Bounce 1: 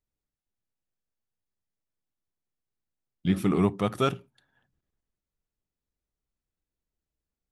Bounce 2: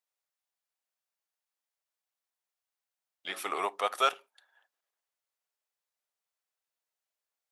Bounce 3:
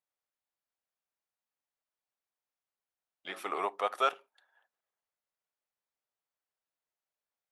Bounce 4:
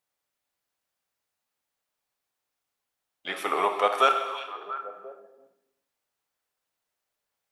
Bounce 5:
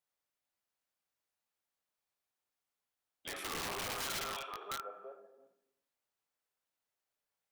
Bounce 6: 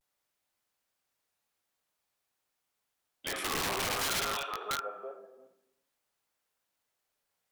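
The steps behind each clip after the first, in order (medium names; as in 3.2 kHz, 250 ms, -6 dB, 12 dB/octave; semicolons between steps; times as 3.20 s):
high-pass 600 Hz 24 dB/octave; trim +3 dB
treble shelf 2.8 kHz -10.5 dB
repeats whose band climbs or falls 344 ms, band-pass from 3.2 kHz, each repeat -1.4 oct, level -9.5 dB; gated-style reverb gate 440 ms falling, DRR 5.5 dB; trim +8 dB
peak limiter -20 dBFS, peak gain reduction 11.5 dB; integer overflow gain 26.5 dB; trim -7 dB
vibrato 0.5 Hz 49 cents; trim +7 dB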